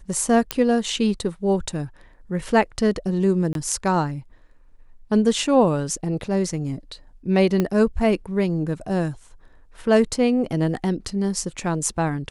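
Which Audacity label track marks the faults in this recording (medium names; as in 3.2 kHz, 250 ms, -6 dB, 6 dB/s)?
0.510000	0.510000	pop -4 dBFS
3.530000	3.550000	dropout 22 ms
7.600000	7.600000	pop -9 dBFS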